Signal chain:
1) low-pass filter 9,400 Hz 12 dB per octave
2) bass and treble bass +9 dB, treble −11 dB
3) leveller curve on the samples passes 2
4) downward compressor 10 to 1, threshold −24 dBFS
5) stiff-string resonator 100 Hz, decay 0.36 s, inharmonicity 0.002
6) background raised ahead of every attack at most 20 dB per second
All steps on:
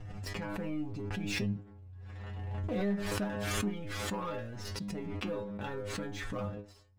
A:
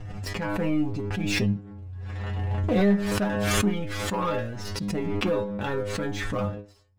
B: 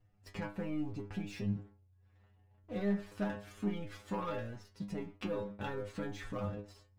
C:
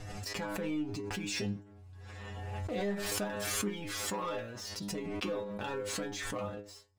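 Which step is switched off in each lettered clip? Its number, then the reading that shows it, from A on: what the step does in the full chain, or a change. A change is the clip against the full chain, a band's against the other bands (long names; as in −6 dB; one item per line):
4, average gain reduction 7.0 dB
6, change in crest factor −4.0 dB
2, 8 kHz band +6.0 dB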